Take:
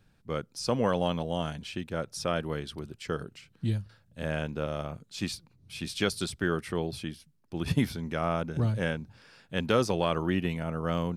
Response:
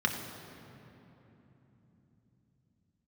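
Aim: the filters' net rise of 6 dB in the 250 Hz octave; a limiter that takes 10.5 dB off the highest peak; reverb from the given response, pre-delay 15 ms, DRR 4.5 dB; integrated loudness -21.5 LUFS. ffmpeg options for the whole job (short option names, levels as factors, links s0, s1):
-filter_complex "[0:a]equalizer=f=250:t=o:g=8,alimiter=limit=0.106:level=0:latency=1,asplit=2[s0][s1];[1:a]atrim=start_sample=2205,adelay=15[s2];[s1][s2]afir=irnorm=-1:irlink=0,volume=0.2[s3];[s0][s3]amix=inputs=2:normalize=0,volume=2.82"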